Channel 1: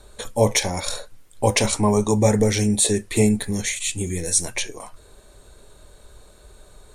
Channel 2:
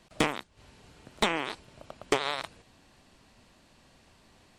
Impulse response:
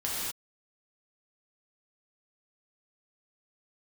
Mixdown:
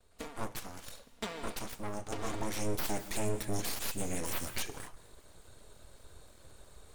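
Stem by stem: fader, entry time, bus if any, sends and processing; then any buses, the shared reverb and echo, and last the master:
2.24 s -19 dB -> 2.86 s -6.5 dB, 0.00 s, send -22.5 dB, gate with hold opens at -42 dBFS; full-wave rectifier
-17.0 dB, 0.00 s, send -18.5 dB, minimum comb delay 4.3 ms; AGC gain up to 11.5 dB; auto duck -9 dB, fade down 1.90 s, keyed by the first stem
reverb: on, pre-delay 3 ms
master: limiter -22 dBFS, peak gain reduction 11 dB

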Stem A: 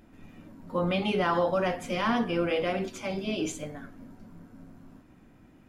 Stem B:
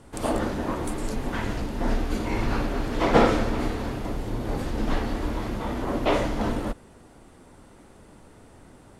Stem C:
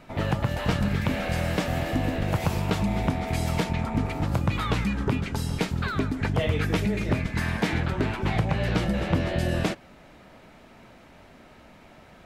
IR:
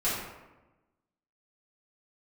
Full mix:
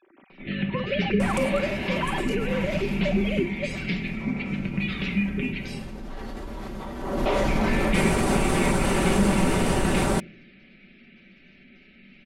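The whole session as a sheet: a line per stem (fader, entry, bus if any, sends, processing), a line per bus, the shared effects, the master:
+3.0 dB, 0.00 s, no send, sine-wave speech; compressor, threshold -29 dBFS, peak gain reduction 11.5 dB
3.25 s -12.5 dB -> 3.46 s -21.5 dB -> 6.96 s -21.5 dB -> 7.25 s -9.5 dB, 1.20 s, no send, fast leveller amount 100%; auto duck -7 dB, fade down 1.80 s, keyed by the first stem
-11.5 dB, 0.30 s, muted 5.79–7.48, send -10.5 dB, EQ curve 120 Hz 0 dB, 250 Hz +9 dB, 950 Hz -15 dB, 2300 Hz +14 dB, 3500 Hz +7 dB, 7900 Hz +2 dB; spectral gate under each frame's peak -30 dB strong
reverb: on, RT60 1.1 s, pre-delay 3 ms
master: comb 5.2 ms, depth 49%

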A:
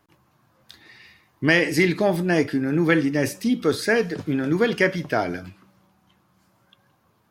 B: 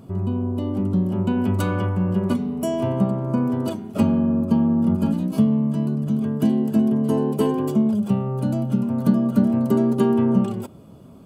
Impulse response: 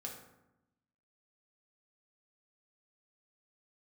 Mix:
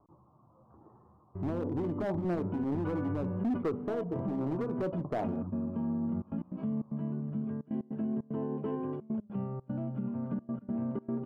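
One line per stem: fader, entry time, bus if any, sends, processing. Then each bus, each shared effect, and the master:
0.0 dB, 0.00 s, no send, steep low-pass 1200 Hz 72 dB/oct; compressor 4:1, threshold -27 dBFS, peak gain reduction 10.5 dB; overloaded stage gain 26.5 dB
-12.5 dB, 1.25 s, no send, LPF 2200 Hz 24 dB/oct; step gate ".xxxxxxx.x.xxx" 151 bpm -24 dB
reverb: off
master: limiter -26 dBFS, peak gain reduction 8 dB

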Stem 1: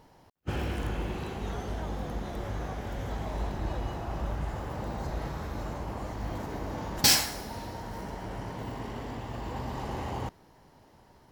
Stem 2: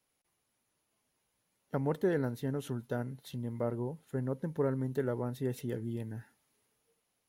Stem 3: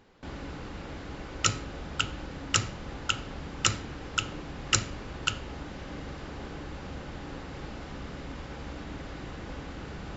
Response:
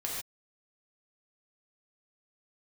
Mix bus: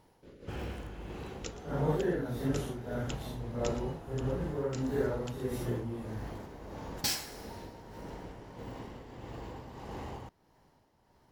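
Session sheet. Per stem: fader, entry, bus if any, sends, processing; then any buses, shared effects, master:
-7.0 dB, 0.00 s, no send, no echo send, dry
+2.5 dB, 0.00 s, no send, no echo send, phase scrambler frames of 0.2 s
-15.0 dB, 0.00 s, no send, echo send -16 dB, spectral limiter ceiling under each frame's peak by 12 dB; resonant low shelf 620 Hz +8 dB, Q 3; rotary speaker horn 6 Hz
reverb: off
echo: echo 0.118 s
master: tremolo 1.6 Hz, depth 49%

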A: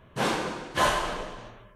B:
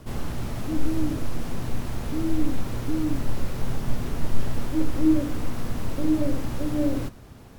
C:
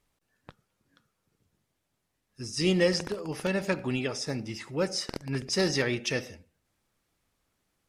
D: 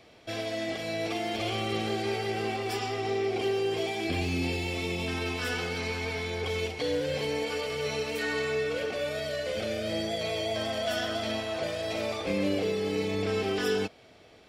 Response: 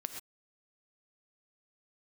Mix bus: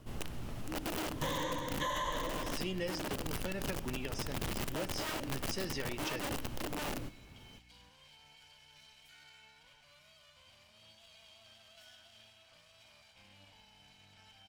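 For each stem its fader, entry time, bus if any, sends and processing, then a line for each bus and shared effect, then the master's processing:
0.0 dB, 1.05 s, no send, ripple EQ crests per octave 1.1, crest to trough 17 dB; limiter -17.5 dBFS, peak gain reduction 11 dB
-12.0 dB, 0.00 s, send -14.5 dB, wrapped overs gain 18.5 dB
-6.5 dB, 0.00 s, no send, hum 60 Hz, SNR 26 dB
-18.0 dB, 0.90 s, send -10.5 dB, minimum comb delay 1.3 ms; passive tone stack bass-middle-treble 5-5-5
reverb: on, pre-delay 3 ms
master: bell 2900 Hz +5 dB 0.3 oct; compressor 3:1, threshold -36 dBFS, peak gain reduction 10.5 dB

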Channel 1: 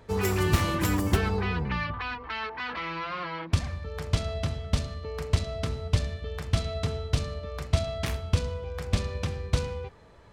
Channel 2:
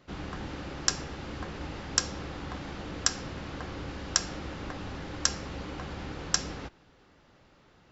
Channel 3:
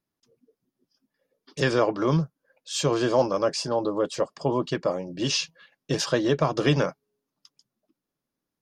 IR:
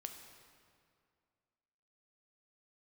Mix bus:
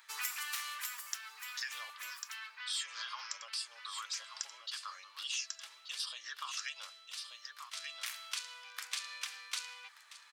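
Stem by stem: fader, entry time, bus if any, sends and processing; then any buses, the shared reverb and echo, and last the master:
-1.5 dB, 0.00 s, no bus, send -16.5 dB, echo send -20 dB, auto duck -17 dB, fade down 1.35 s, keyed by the third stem
-15.0 dB, 0.25 s, bus A, no send, echo send -18 dB, reverb removal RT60 1.8 s
-0.5 dB, 0.00 s, bus A, no send, echo send -17 dB, phaser stages 6, 1.2 Hz, lowest notch 530–1900 Hz
bus A: 0.0 dB, compressor 2.5:1, threshold -35 dBFS, peak gain reduction 12 dB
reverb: on, RT60 2.2 s, pre-delay 4 ms
echo: echo 1.181 s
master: HPF 1200 Hz 24 dB/oct; tilt +2.5 dB/oct; compressor 2:1, threshold -39 dBFS, peak gain reduction 7.5 dB

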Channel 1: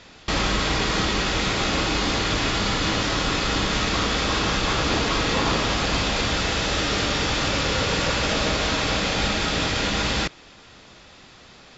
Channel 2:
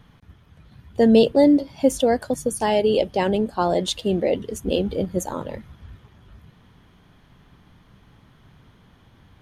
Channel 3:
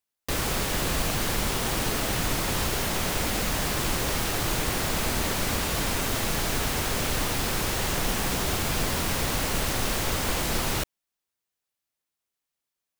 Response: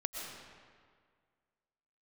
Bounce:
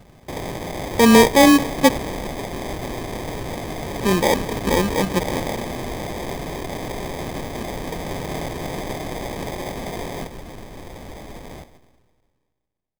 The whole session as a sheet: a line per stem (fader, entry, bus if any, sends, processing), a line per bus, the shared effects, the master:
-3.5 dB, 0.00 s, no send, inverse Chebyshev high-pass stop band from 330 Hz, stop band 40 dB
+2.0 dB, 0.00 s, muted 2–4, send -18.5 dB, dry
-12.0 dB, 0.80 s, send -11.5 dB, dry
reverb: on, RT60 1.9 s, pre-delay 80 ms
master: sample-rate reducer 1400 Hz, jitter 0%

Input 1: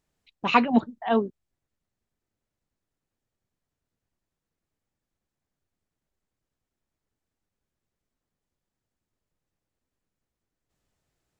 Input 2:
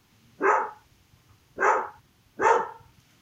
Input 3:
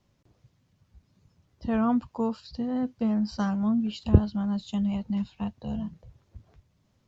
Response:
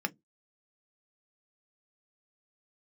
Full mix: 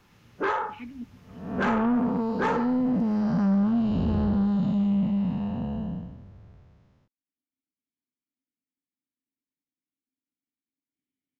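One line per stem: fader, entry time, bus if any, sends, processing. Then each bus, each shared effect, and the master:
+1.5 dB, 0.25 s, no send, vowel filter i; auto duck -16 dB, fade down 1.25 s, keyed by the third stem
+2.5 dB, 0.00 s, send -12.5 dB, compressor 4:1, threshold -26 dBFS, peak gain reduction 10 dB
+1.0 dB, 0.00 s, send -18 dB, time blur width 0.411 s; LPF 3700 Hz 6 dB/oct; AGC gain up to 8 dB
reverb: on, RT60 0.15 s, pre-delay 3 ms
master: high shelf 3500 Hz -8.5 dB; soft clip -18.5 dBFS, distortion -15 dB

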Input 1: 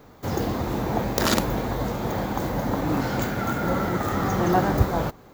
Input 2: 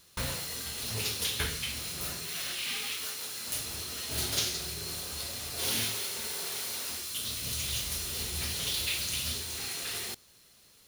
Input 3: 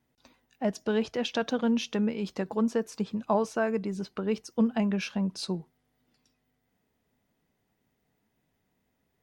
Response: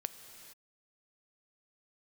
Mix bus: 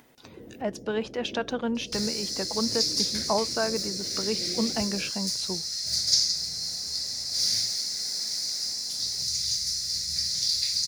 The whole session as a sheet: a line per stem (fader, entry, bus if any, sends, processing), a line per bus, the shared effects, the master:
-17.0 dB, 0.00 s, no send, steep low-pass 520 Hz 36 dB/oct
-2.5 dB, 1.75 s, no send, EQ curve 180 Hz 0 dB, 330 Hz -22 dB, 620 Hz -9 dB, 920 Hz -23 dB, 2000 Hz -6 dB, 3000 Hz -22 dB, 4800 Hz +14 dB, 12000 Hz -14 dB
-3.5 dB, 0.00 s, no send, upward compressor, threshold -35 dBFS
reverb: off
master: low shelf 180 Hz -12 dB; AGC gain up to 4.5 dB

